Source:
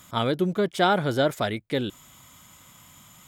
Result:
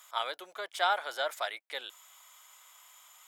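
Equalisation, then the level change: HPF 700 Hz 24 dB/oct; -4.5 dB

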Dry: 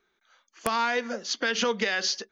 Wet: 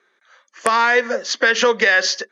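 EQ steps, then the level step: speaker cabinet 240–9400 Hz, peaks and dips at 540 Hz +9 dB, 1100 Hz +5 dB, 1800 Hz +10 dB, 8900 Hz +8 dB; +6.5 dB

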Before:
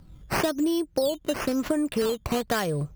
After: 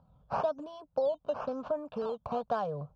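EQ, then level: band-pass 660 Hz, Q 0.6; air absorption 190 m; fixed phaser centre 820 Hz, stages 4; 0.0 dB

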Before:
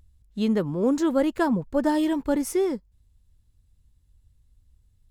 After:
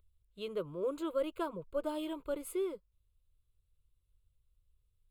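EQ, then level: bell 66 Hz -7.5 dB 2.5 oct; fixed phaser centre 1200 Hz, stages 8; -8.0 dB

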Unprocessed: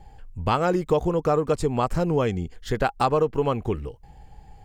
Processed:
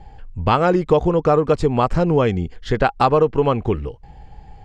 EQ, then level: LPF 4700 Hz 12 dB/oct; +6.0 dB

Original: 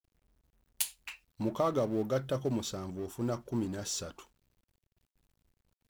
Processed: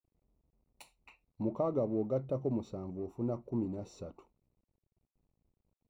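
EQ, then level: running mean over 27 samples; low shelf 87 Hz -5.5 dB; 0.0 dB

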